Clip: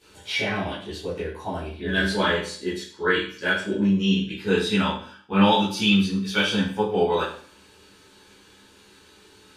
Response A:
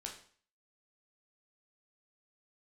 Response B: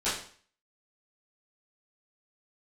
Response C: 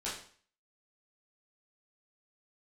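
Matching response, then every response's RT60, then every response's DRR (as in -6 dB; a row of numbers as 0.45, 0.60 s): B; 0.50, 0.50, 0.50 s; 0.0, -14.0, -9.0 dB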